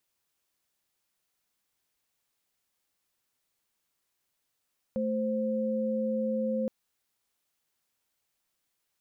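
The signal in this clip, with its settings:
held notes A3/C5 sine, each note −29.5 dBFS 1.72 s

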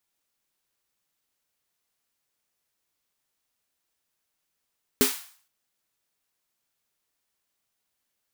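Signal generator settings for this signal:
synth snare length 0.47 s, tones 260 Hz, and 410 Hz, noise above 860 Hz, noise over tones −2.5 dB, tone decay 0.16 s, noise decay 0.49 s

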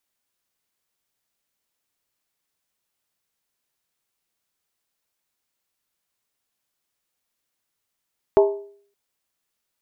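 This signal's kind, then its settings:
struck skin length 0.57 s, lowest mode 403 Hz, decay 0.54 s, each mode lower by 6 dB, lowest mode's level −9 dB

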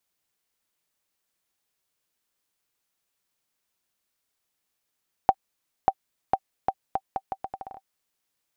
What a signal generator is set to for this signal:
bouncing ball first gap 0.59 s, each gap 0.77, 774 Hz, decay 54 ms −5 dBFS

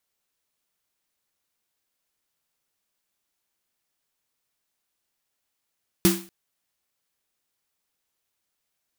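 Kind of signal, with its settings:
synth snare length 0.24 s, tones 190 Hz, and 340 Hz, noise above 710 Hz, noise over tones −4 dB, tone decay 0.35 s, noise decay 0.38 s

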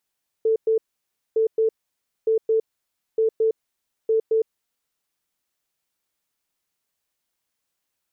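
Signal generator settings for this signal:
beeps in groups sine 444 Hz, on 0.11 s, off 0.11 s, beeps 2, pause 0.58 s, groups 5, −16 dBFS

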